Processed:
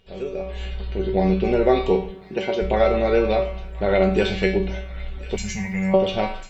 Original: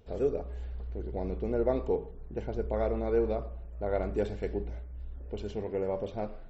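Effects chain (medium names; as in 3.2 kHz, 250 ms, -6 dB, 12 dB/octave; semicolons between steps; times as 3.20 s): peaking EQ 3 kHz +14.5 dB 1.4 oct; feedback comb 190 Hz, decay 0.36 s, harmonics all, mix 90%; in parallel at +1 dB: compression, threshold -42 dBFS, peak gain reduction 9 dB; 5.36–5.94 s: on the sum: FFT filter 210 Hz 0 dB, 330 Hz -27 dB, 970 Hz -7 dB, 1.4 kHz -10 dB, 2.1 kHz +6 dB, 3.2 kHz -19 dB, 6.5 kHz +13 dB; level rider gain up to 13.5 dB; 2.10–2.60 s: high-pass 120 Hz -> 270 Hz 12 dB/octave; on a send: feedback echo behind a high-pass 1046 ms, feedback 50%, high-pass 1.6 kHz, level -15 dB; on the sum: trim +5.5 dB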